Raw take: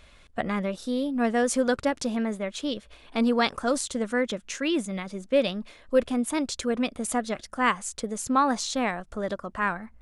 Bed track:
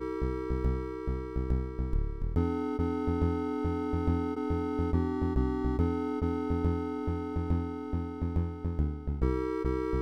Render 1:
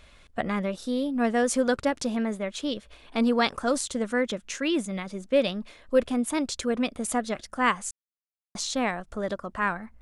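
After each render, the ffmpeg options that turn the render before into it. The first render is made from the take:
-filter_complex "[0:a]asplit=3[s0][s1][s2];[s0]atrim=end=7.91,asetpts=PTS-STARTPTS,afade=t=out:st=7.906:d=0.004:c=hsin[s3];[s1]atrim=start=7.91:end=8.55,asetpts=PTS-STARTPTS,volume=0[s4];[s2]atrim=start=8.55,asetpts=PTS-STARTPTS,afade=t=in:d=0.004:c=hsin[s5];[s3][s4][s5]concat=n=3:v=0:a=1"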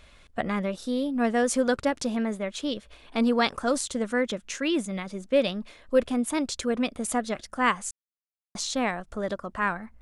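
-af anull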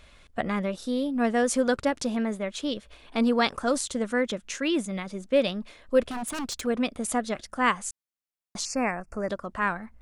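-filter_complex "[0:a]asplit=3[s0][s1][s2];[s0]afade=t=out:st=6.08:d=0.02[s3];[s1]aeval=exprs='0.0473*(abs(mod(val(0)/0.0473+3,4)-2)-1)':c=same,afade=t=in:st=6.08:d=0.02,afade=t=out:st=6.65:d=0.02[s4];[s2]afade=t=in:st=6.65:d=0.02[s5];[s3][s4][s5]amix=inputs=3:normalize=0,asettb=1/sr,asplit=3[s6][s7][s8];[s6]atrim=end=8.654[s9];[s7]atrim=start=8.65:end=9.3,asetpts=PTS-STARTPTS,afade=t=in:d=0.004:c=qsin,afade=t=out:st=0.646:d=0.004:c=qsin,asuperstop=centerf=3500:order=20:qfactor=2[s10];[s8]atrim=start=9.296[s11];[s9][s10]acrossfade=d=0.004:c1=hsin:c2=qsin[s12];[s12][s11]acrossfade=d=0.004:c1=qsin:c2=hsin"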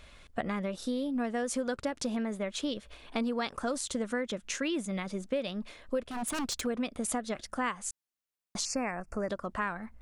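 -af "acompressor=threshold=0.0355:ratio=6"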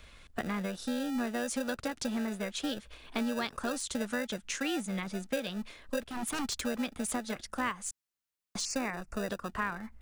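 -filter_complex "[0:a]acrossover=split=280|600|4600[s0][s1][s2][s3];[s1]acrusher=samples=41:mix=1:aa=0.000001[s4];[s3]asoftclip=type=tanh:threshold=0.0355[s5];[s0][s4][s2][s5]amix=inputs=4:normalize=0"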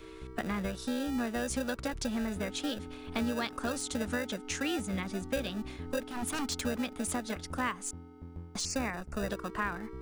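-filter_complex "[1:a]volume=0.188[s0];[0:a][s0]amix=inputs=2:normalize=0"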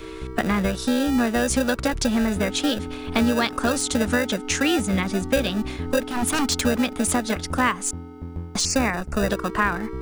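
-af "volume=3.98"

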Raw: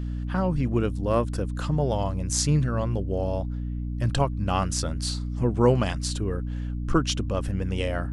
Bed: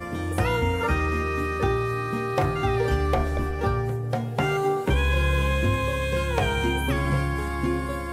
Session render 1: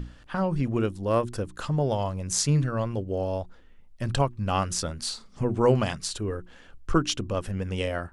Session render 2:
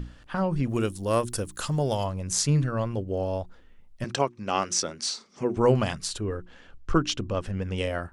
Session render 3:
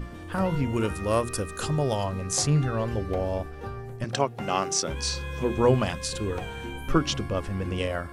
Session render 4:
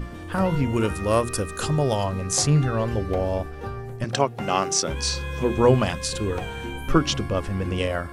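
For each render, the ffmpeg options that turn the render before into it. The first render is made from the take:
-af "bandreject=f=60:t=h:w=6,bandreject=f=120:t=h:w=6,bandreject=f=180:t=h:w=6,bandreject=f=240:t=h:w=6,bandreject=f=300:t=h:w=6,bandreject=f=360:t=h:w=6"
-filter_complex "[0:a]asplit=3[s0][s1][s2];[s0]afade=t=out:st=0.68:d=0.02[s3];[s1]aemphasis=mode=production:type=75fm,afade=t=in:st=0.68:d=0.02,afade=t=out:st=2.04:d=0.02[s4];[s2]afade=t=in:st=2.04:d=0.02[s5];[s3][s4][s5]amix=inputs=3:normalize=0,asettb=1/sr,asplit=3[s6][s7][s8];[s6]atrim=end=4.044[s9];[s7]atrim=start=4.04:end=5.57,asetpts=PTS-STARTPTS,afade=t=in:d=0.004:c=qsin,afade=t=out:st=1.526:d=0.004:c=qsin,highpass=230,equalizer=f=380:t=q:w=4:g=5,equalizer=f=2200:t=q:w=4:g=5,equalizer=f=5800:t=q:w=4:g=8,lowpass=f=8900:w=0.5412,lowpass=f=8900:w=1.3066[s10];[s8]atrim=start=5.566[s11];[s9][s10]acrossfade=d=0.004:c1=hsin:c2=qsin[s12];[s12][s11]acrossfade=d=0.004:c1=qsin:c2=hsin,asettb=1/sr,asplit=3[s13][s14][s15];[s13]atrim=end=6.194[s16];[s14]atrim=start=6.19:end=7.78,asetpts=PTS-STARTPTS,afade=t=in:d=0.004:c=qsin,afade=t=out:st=1.586:d=0.004:c=qsin,lowpass=6900[s17];[s15]atrim=start=7.776[s18];[s16][s17]acrossfade=d=0.004:c1=hsin:c2=qsin[s19];[s19][s18]acrossfade=d=0.004:c1=qsin:c2=hsin"
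-filter_complex "[1:a]volume=0.251[s0];[0:a][s0]amix=inputs=2:normalize=0"
-af "volume=1.5"

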